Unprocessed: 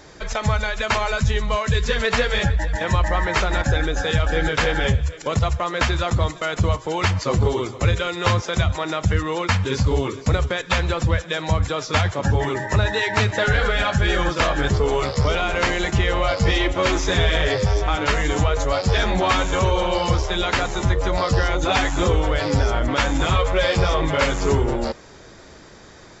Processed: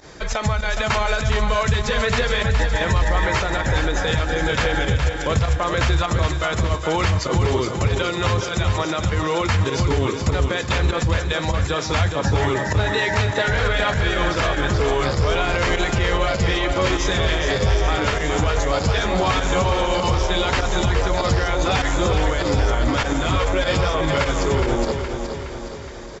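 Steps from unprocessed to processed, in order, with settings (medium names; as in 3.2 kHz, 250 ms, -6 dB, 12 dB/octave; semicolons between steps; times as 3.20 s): peak limiter -14.5 dBFS, peak gain reduction 10 dB; volume shaper 99 bpm, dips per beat 1, -16 dB, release 60 ms; feedback delay 417 ms, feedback 56%, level -7 dB; trim +3 dB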